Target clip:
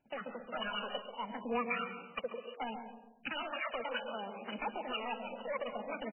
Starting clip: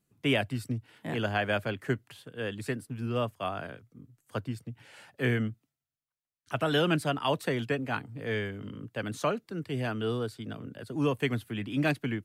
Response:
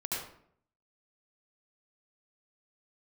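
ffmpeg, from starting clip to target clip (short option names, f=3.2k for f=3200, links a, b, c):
-filter_complex "[0:a]highshelf=f=2.4k:g=5,acompressor=threshold=-28dB:ratio=12,flanger=delay=2.5:depth=1:regen=-12:speed=0.76:shape=sinusoidal,asoftclip=type=hard:threshold=-33dB,aphaser=in_gain=1:out_gain=1:delay=4.3:decay=0.57:speed=0.32:type=triangular,crystalizer=i=9:c=0,asetrate=88200,aresample=44100,asplit=2[a][b];[b]adelay=137,lowpass=f=910:p=1,volume=-6dB,asplit=2[c][d];[d]adelay=137,lowpass=f=910:p=1,volume=0.45,asplit=2[e][f];[f]adelay=137,lowpass=f=910:p=1,volume=0.45,asplit=2[g][h];[h]adelay=137,lowpass=f=910:p=1,volume=0.45,asplit=2[i][j];[j]adelay=137,lowpass=f=910:p=1,volume=0.45[k];[a][c][e][g][i][k]amix=inputs=6:normalize=0,asplit=2[l][m];[1:a]atrim=start_sample=2205,adelay=112[n];[m][n]afir=irnorm=-1:irlink=0,volume=-16dB[o];[l][o]amix=inputs=2:normalize=0,volume=-2dB" -ar 12000 -c:a libmp3lame -b:a 8k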